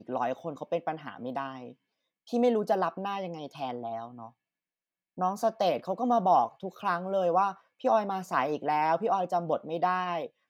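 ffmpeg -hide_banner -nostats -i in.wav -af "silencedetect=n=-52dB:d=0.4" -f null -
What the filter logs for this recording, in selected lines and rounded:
silence_start: 1.73
silence_end: 2.27 | silence_duration: 0.54
silence_start: 4.31
silence_end: 5.17 | silence_duration: 0.87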